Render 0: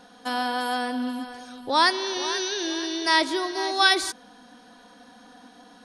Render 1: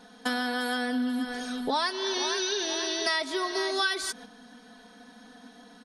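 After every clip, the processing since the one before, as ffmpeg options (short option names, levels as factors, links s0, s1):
-af "agate=range=0.398:threshold=0.00562:ratio=16:detection=peak,aecho=1:1:4.6:0.66,acompressor=threshold=0.0251:ratio=5,volume=1.88"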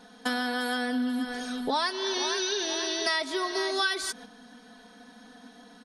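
-af anull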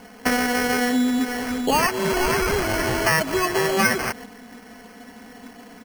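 -af "acrusher=samples=12:mix=1:aa=0.000001,volume=2.51"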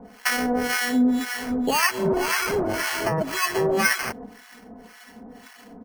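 -filter_complex "[0:a]acrossover=split=120[s0][s1];[s0]acompressor=threshold=0.00891:ratio=6[s2];[s2][s1]amix=inputs=2:normalize=0,acrossover=split=930[s3][s4];[s3]aeval=exprs='val(0)*(1-1/2+1/2*cos(2*PI*1.9*n/s))':c=same[s5];[s4]aeval=exprs='val(0)*(1-1/2-1/2*cos(2*PI*1.9*n/s))':c=same[s6];[s5][s6]amix=inputs=2:normalize=0,volume=1.33"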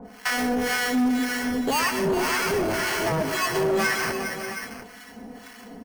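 -filter_complex "[0:a]asplit=2[s0][s1];[s1]aecho=0:1:127|182|407|586|717:0.211|0.133|0.237|0.133|0.168[s2];[s0][s2]amix=inputs=2:normalize=0,asoftclip=type=tanh:threshold=0.0944,volume=1.26"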